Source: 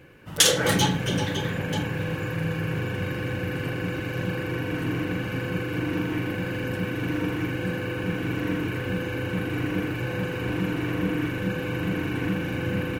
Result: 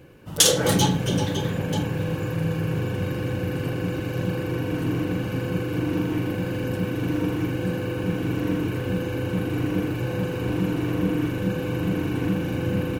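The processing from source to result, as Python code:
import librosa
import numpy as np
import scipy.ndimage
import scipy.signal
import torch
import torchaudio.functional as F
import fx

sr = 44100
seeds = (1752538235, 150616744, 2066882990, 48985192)

y = fx.peak_eq(x, sr, hz=1900.0, db=-8.5, octaves=1.3)
y = F.gain(torch.from_numpy(y), 3.0).numpy()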